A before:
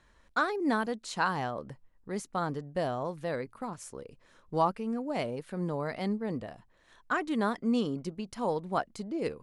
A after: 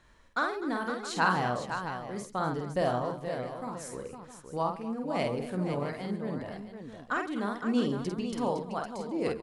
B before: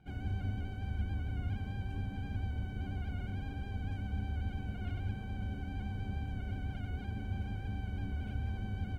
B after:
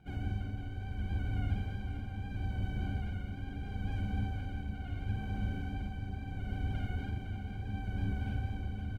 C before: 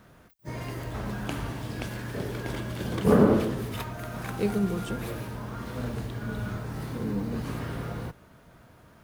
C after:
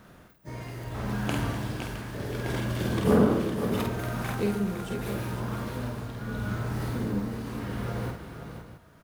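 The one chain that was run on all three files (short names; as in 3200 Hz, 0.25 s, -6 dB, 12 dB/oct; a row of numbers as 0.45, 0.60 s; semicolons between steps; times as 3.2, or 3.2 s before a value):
tremolo 0.74 Hz, depth 58%; on a send: tapped delay 49/137/249/510/663 ms -4/-17.5/-15/-8/-13.5 dB; on the sum: gain +2 dB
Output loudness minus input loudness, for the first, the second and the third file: +0.5, +1.0, 0.0 LU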